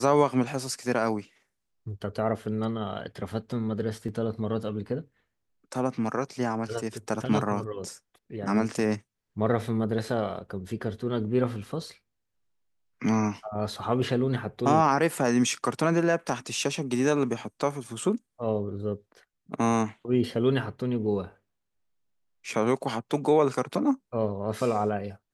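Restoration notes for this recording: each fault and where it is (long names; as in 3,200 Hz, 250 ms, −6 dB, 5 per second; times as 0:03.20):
0:04.08: drop-out 3.8 ms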